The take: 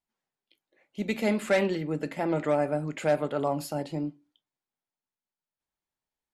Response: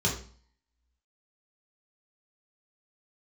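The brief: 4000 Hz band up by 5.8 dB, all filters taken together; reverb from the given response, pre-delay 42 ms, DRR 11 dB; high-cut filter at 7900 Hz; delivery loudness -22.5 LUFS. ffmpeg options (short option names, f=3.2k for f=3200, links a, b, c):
-filter_complex "[0:a]lowpass=7.9k,equalizer=f=4k:t=o:g=7.5,asplit=2[a][b];[1:a]atrim=start_sample=2205,adelay=42[c];[b][c]afir=irnorm=-1:irlink=0,volume=-20.5dB[d];[a][d]amix=inputs=2:normalize=0,volume=5.5dB"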